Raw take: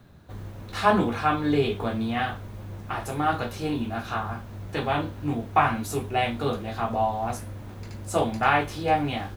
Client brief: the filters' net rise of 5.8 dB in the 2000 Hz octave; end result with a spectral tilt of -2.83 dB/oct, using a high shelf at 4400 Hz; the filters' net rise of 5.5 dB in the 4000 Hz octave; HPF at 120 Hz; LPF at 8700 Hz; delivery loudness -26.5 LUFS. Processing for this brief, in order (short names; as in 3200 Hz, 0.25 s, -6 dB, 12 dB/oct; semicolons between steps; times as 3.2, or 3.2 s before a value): HPF 120 Hz; LPF 8700 Hz; bell 2000 Hz +7.5 dB; bell 4000 Hz +8 dB; high shelf 4400 Hz -8 dB; gain -2 dB